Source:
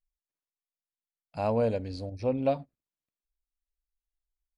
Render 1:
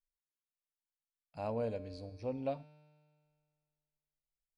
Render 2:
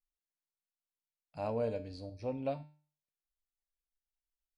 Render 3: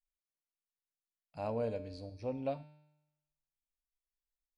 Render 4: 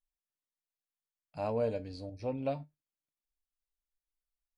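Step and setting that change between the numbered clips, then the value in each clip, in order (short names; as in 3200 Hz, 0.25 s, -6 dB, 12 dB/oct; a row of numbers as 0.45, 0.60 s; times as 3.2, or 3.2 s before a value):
resonator, decay: 2, 0.42, 0.93, 0.16 s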